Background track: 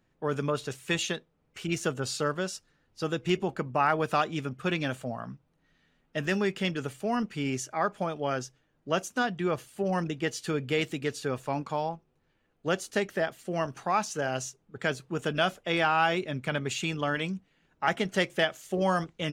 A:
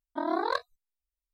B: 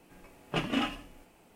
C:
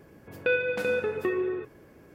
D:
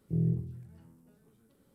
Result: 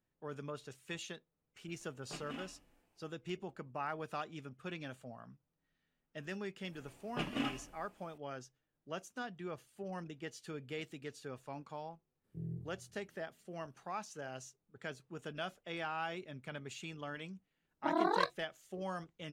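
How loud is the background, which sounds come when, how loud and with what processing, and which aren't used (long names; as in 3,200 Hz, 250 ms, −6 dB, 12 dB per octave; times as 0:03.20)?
background track −15 dB
0:01.57: mix in B −17 dB
0:06.63: mix in B −7.5 dB
0:12.24: mix in D −14.5 dB
0:17.68: mix in A −3 dB
not used: C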